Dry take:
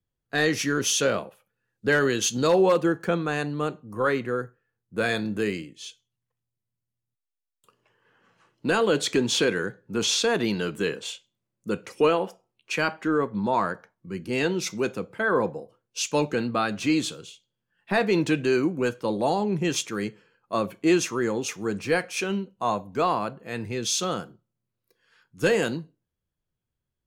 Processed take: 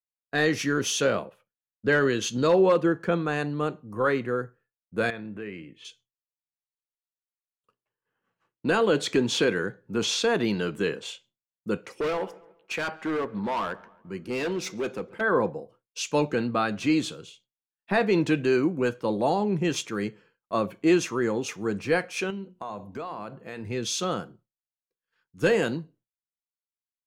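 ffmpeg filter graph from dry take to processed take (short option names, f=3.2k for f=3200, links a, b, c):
-filter_complex "[0:a]asettb=1/sr,asplit=3[a][b][c];[a]atrim=end=1.254[d];[b]atrim=start=1.25:end=3.12,asetpts=PTS-STARTPTS,afade=t=in:d=0.004:c=qsin,afade=t=out:st=1.866:d=0.004:c=qsin,highshelf=f=8k:g=-7,bandreject=f=790:w=8.6[e];[c]atrim=start=3.116[f];[d][e]acrossfade=d=0.004:c1=hsin:c2=qsin[g];[g][f]acrossfade=d=0.004:c1=qsin:c2=hsin,asettb=1/sr,asplit=3[h][i][j];[h]atrim=end=5.104[k];[i]atrim=start=5.1:end=5.85,asetpts=PTS-STARTPTS,afade=t=in:d=0.004:c=qsin,afade=t=out:st=0.746:d=0.004:c=qsin,highshelf=f=3.7k:t=q:w=1.5:g=-13.5,acompressor=threshold=-41dB:ratio=2:attack=3.2:release=140:knee=1:detection=peak[l];[j]atrim=start=5.846[m];[k][l]acrossfade=d=0.004:c1=hsin:c2=qsin[n];[n][m]acrossfade=d=0.004:c1=qsin:c2=hsin,asettb=1/sr,asplit=3[o][p][q];[o]atrim=end=11.774[r];[p]atrim=start=11.77:end=15.21,asetpts=PTS-STARTPTS,afade=t=in:d=0.004:c=qsin,afade=t=out:st=3.436:d=0.004:c=qsin,bass=f=250:g=-5,treble=f=4k:g=0,asoftclip=type=hard:threshold=-24.5dB,asplit=2[s][t];[t]adelay=139,lowpass=f=2.7k:p=1,volume=-21.5dB,asplit=2[u][v];[v]adelay=139,lowpass=f=2.7k:p=1,volume=0.54,asplit=2[w][x];[x]adelay=139,lowpass=f=2.7k:p=1,volume=0.54,asplit=2[y][z];[z]adelay=139,lowpass=f=2.7k:p=1,volume=0.54[aa];[s][u][w][y][aa]amix=inputs=5:normalize=0,atrim=end_sample=151704[ab];[q]atrim=start=15.206[ac];[r][ab]acrossfade=d=0.004:c1=hsin:c2=qsin[ad];[ad][ac]acrossfade=d=0.004:c1=qsin:c2=hsin,asettb=1/sr,asplit=3[ae][af][ag];[ae]atrim=end=22.304[ah];[af]atrim=start=22.3:end=23.67,asetpts=PTS-STARTPTS,afade=t=in:d=0.004:c=qsin,afade=t=out:st=1.366:d=0.004:c=qsin,bandreject=f=60:t=h:w=6,bandreject=f=120:t=h:w=6,bandreject=f=180:t=h:w=6,bandreject=f=240:t=h:w=6,bandreject=f=300:t=h:w=6,bandreject=f=360:t=h:w=6,acompressor=threshold=-32dB:ratio=5:attack=3.2:release=140:knee=1:detection=peak[ai];[ag]atrim=start=23.666[aj];[ah][ai]acrossfade=d=0.004:c1=hsin:c2=qsin[ak];[ak][aj]acrossfade=d=0.004:c1=qsin:c2=hsin,agate=range=-33dB:threshold=-52dB:ratio=3:detection=peak,highshelf=f=4.5k:g=-7"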